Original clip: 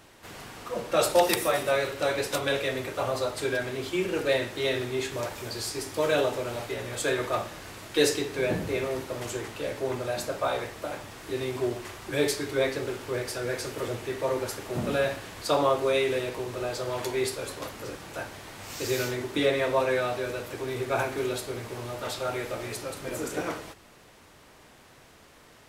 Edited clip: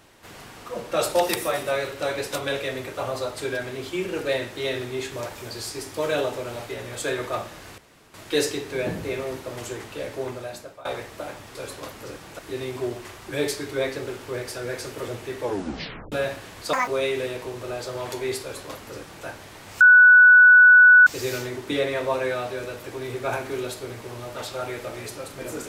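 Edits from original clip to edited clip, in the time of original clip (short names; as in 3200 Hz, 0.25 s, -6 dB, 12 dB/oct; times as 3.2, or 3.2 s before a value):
7.78 insert room tone 0.36 s
9.84–10.49 fade out, to -20.5 dB
14.2 tape stop 0.72 s
15.53–15.8 speed 185%
17.34–18.18 copy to 11.19
18.73 add tone 1480 Hz -8 dBFS 1.26 s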